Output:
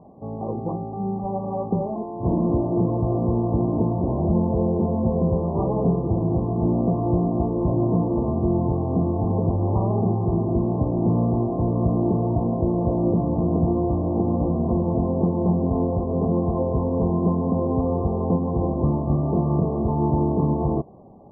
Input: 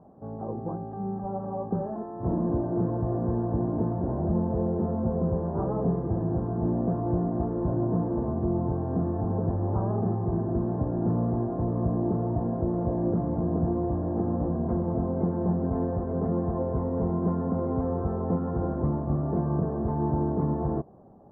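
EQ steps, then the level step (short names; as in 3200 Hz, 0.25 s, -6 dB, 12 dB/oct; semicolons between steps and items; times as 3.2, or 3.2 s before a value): brick-wall FIR low-pass 1200 Hz; +5.5 dB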